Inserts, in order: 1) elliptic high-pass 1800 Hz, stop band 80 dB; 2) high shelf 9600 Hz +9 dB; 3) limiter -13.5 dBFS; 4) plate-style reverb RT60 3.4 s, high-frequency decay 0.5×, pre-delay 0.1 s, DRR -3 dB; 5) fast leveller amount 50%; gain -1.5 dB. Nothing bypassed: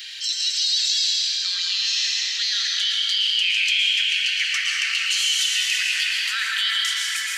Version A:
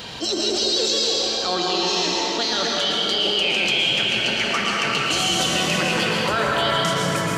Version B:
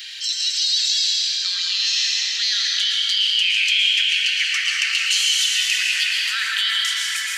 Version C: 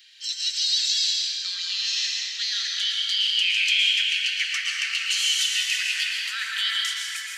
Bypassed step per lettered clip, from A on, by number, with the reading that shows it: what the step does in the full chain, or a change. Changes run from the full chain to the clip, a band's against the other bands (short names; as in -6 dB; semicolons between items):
1, 1 kHz band +18.5 dB; 3, crest factor change +1.5 dB; 5, crest factor change +2.0 dB